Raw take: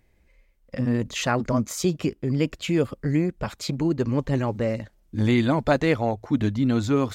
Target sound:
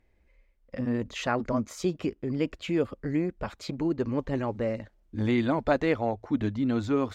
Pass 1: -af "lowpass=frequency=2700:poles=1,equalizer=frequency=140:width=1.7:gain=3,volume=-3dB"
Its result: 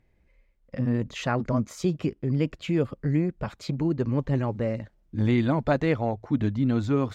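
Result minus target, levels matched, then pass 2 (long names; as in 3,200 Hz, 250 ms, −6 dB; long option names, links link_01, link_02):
125 Hz band +5.5 dB
-af "lowpass=frequency=2700:poles=1,equalizer=frequency=140:width=1.7:gain=-7,volume=-3dB"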